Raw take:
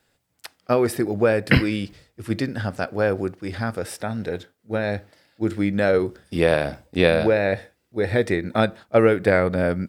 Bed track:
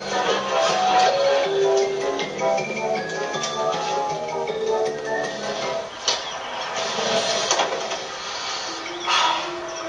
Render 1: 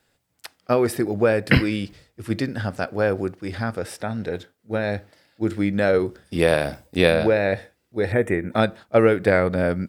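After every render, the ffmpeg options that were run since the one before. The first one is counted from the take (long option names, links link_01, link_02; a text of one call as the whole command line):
ffmpeg -i in.wav -filter_complex "[0:a]asettb=1/sr,asplit=3[link_01][link_02][link_03];[link_01]atrim=end=3.624[link_04];[link_02]atrim=start=3.62:end=4.34,asetpts=PTS-STARTPTS,afade=type=in:duration=0.004:curve=qsin,afade=type=out:start_time=0.716:duration=0.004:curve=qsin,highshelf=frequency=7900:gain=-5[link_05];[link_03]atrim=start=4.336[link_06];[link_04][link_05]acrossfade=duration=0.004:curve1=hsin:curve2=qsin[link_07];[link_07][link_06]acrossfade=duration=0.004:curve1=qsin:curve2=hsin,asettb=1/sr,asplit=3[link_08][link_09][link_10];[link_08]atrim=end=6.394[link_11];[link_09]atrim=start=6.39:end=7.13,asetpts=PTS-STARTPTS,afade=type=in:duration=0.004:curve=qsin,afade=type=out:start_time=0.736:duration=0.004:curve=qsin,highshelf=frequency=7000:gain=9.5[link_12];[link_10]atrim=start=7.126[link_13];[link_11][link_12]acrossfade=duration=0.004:curve1=hsin:curve2=qsin[link_14];[link_14][link_13]acrossfade=duration=0.004:curve1=qsin:curve2=hsin,asettb=1/sr,asplit=3[link_15][link_16][link_17];[link_15]atrim=end=8.124[link_18];[link_16]atrim=start=8.12:end=8.52,asetpts=PTS-STARTPTS,afade=type=in:duration=0.004:curve=qsin,afade=type=out:start_time=0.396:duration=0.004:curve=qsin,asuperstop=centerf=4500:order=4:qfactor=0.95[link_19];[link_17]atrim=start=8.516[link_20];[link_18][link_19]acrossfade=duration=0.004:curve1=hsin:curve2=qsin[link_21];[link_21][link_20]acrossfade=duration=0.004:curve1=qsin:curve2=hsin" out.wav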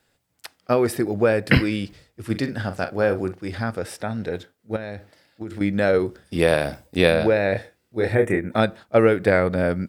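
ffmpeg -i in.wav -filter_complex "[0:a]asettb=1/sr,asplit=3[link_01][link_02][link_03];[link_01]atrim=end=2.254[link_04];[link_02]atrim=start=2.25:end=3.43,asetpts=PTS-STARTPTS,afade=type=in:duration=0.004:curve=qsin,afade=type=out:start_time=1.176:duration=0.004:curve=qsin,asplit=2[link_05][link_06];[link_06]adelay=43,volume=-10.5dB[link_07];[link_05][link_07]amix=inputs=2:normalize=0,atrim=end_sample=52038[link_08];[link_03]atrim=start=3.426[link_09];[link_04][link_08]acrossfade=duration=0.004:curve1=hsin:curve2=qsin[link_10];[link_10][link_09]acrossfade=duration=0.004:curve1=qsin:curve2=hsin,asettb=1/sr,asplit=3[link_11][link_12][link_13];[link_11]atrim=end=4.764[link_14];[link_12]atrim=start=4.76:end=5.61,asetpts=PTS-STARTPTS,afade=type=in:duration=0.004:curve=qsin,afade=type=out:start_time=0.846:duration=0.004:curve=qsin,acompressor=threshold=-28dB:ratio=6:attack=3.2:release=140:knee=1:detection=peak[link_15];[link_13]atrim=start=5.606[link_16];[link_14][link_15]acrossfade=duration=0.004:curve1=hsin:curve2=qsin[link_17];[link_17][link_16]acrossfade=duration=0.004:curve1=qsin:curve2=hsin,asettb=1/sr,asplit=3[link_18][link_19][link_20];[link_18]atrim=end=7.524[link_21];[link_19]atrim=start=7.52:end=8.39,asetpts=PTS-STARTPTS,afade=type=in:duration=0.004:curve=qsin,afade=type=out:start_time=0.866:duration=0.004:curve=qsin,asplit=2[link_22][link_23];[link_23]adelay=27,volume=-5dB[link_24];[link_22][link_24]amix=inputs=2:normalize=0,atrim=end_sample=38367[link_25];[link_20]atrim=start=8.386[link_26];[link_21][link_25]acrossfade=duration=0.004:curve1=hsin:curve2=qsin[link_27];[link_27][link_26]acrossfade=duration=0.004:curve1=qsin:curve2=hsin" out.wav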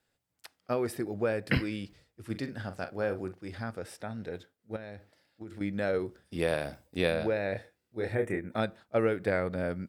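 ffmpeg -i in.wav -af "volume=-11dB" out.wav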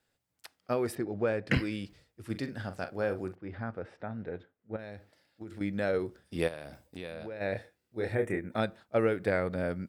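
ffmpeg -i in.wav -filter_complex "[0:a]asettb=1/sr,asplit=3[link_01][link_02][link_03];[link_01]atrim=end=0.954[link_04];[link_02]atrim=start=0.95:end=1.58,asetpts=PTS-STARTPTS,afade=type=in:duration=0.004:curve=qsin,afade=type=out:start_time=0.626:duration=0.004:curve=qsin,adynamicsmooth=sensitivity=5:basefreq=4300[link_05];[link_03]atrim=start=1.576[link_06];[link_04][link_05]acrossfade=duration=0.004:curve1=hsin:curve2=qsin[link_07];[link_07][link_06]acrossfade=duration=0.004:curve1=qsin:curve2=hsin,asettb=1/sr,asplit=3[link_08][link_09][link_10];[link_08]atrim=end=3.354[link_11];[link_09]atrim=start=3.35:end=4.79,asetpts=PTS-STARTPTS,afade=type=in:duration=0.004:curve=qsin,afade=type=out:start_time=1.436:duration=0.004:curve=qsin,lowpass=2000[link_12];[link_10]atrim=start=4.786[link_13];[link_11][link_12]acrossfade=duration=0.004:curve1=hsin:curve2=qsin[link_14];[link_14][link_13]acrossfade=duration=0.004:curve1=qsin:curve2=hsin,asplit=3[link_15][link_16][link_17];[link_15]afade=type=out:start_time=6.47:duration=0.02[link_18];[link_16]acompressor=threshold=-41dB:ratio=3:attack=3.2:release=140:knee=1:detection=peak,afade=type=in:start_time=6.47:duration=0.02,afade=type=out:start_time=7.4:duration=0.02[link_19];[link_17]afade=type=in:start_time=7.4:duration=0.02[link_20];[link_18][link_19][link_20]amix=inputs=3:normalize=0" out.wav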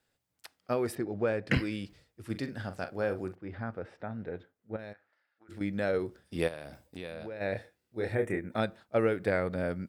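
ffmpeg -i in.wav -filter_complex "[0:a]asplit=3[link_01][link_02][link_03];[link_01]afade=type=out:start_time=4.92:duration=0.02[link_04];[link_02]bandpass=frequency=1400:width_type=q:width=2.3,afade=type=in:start_time=4.92:duration=0.02,afade=type=out:start_time=5.48:duration=0.02[link_05];[link_03]afade=type=in:start_time=5.48:duration=0.02[link_06];[link_04][link_05][link_06]amix=inputs=3:normalize=0" out.wav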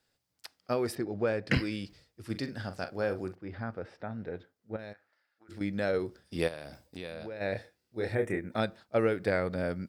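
ffmpeg -i in.wav -af "equalizer=frequency=4900:width=2.2:gain=6.5" out.wav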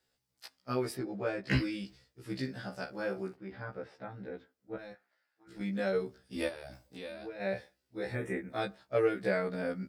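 ffmpeg -i in.wav -af "afftfilt=real='re*1.73*eq(mod(b,3),0)':imag='im*1.73*eq(mod(b,3),0)':win_size=2048:overlap=0.75" out.wav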